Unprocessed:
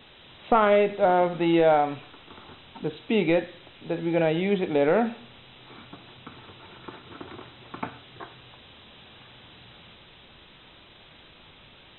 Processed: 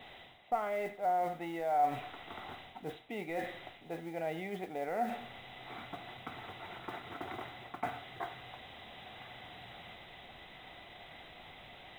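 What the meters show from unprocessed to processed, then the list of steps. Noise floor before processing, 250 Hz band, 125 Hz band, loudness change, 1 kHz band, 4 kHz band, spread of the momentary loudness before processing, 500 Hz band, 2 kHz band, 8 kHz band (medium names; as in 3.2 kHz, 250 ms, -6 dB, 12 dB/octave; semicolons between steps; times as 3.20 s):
-52 dBFS, -17.0 dB, -15.0 dB, -16.0 dB, -7.5 dB, -9.0 dB, 22 LU, -15.0 dB, -10.0 dB, no reading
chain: modulation noise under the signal 23 dB; reverse; compression 6:1, threshold -36 dBFS, peak gain reduction 19 dB; reverse; small resonant body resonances 730/2000 Hz, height 14 dB, ringing for 25 ms; dynamic bell 1.4 kHz, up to +4 dB, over -53 dBFS, Q 1.9; trim -4 dB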